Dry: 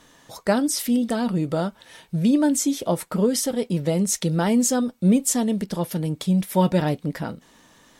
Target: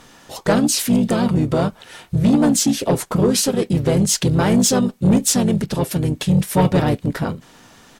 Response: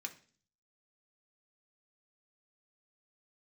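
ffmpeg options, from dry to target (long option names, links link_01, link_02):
-filter_complex "[0:a]asplit=4[link_01][link_02][link_03][link_04];[link_02]asetrate=22050,aresample=44100,atempo=2,volume=-12dB[link_05];[link_03]asetrate=33038,aresample=44100,atempo=1.33484,volume=-15dB[link_06];[link_04]asetrate=35002,aresample=44100,atempo=1.25992,volume=-3dB[link_07];[link_01][link_05][link_06][link_07]amix=inputs=4:normalize=0,asoftclip=type=tanh:threshold=-13.5dB,volume=5dB"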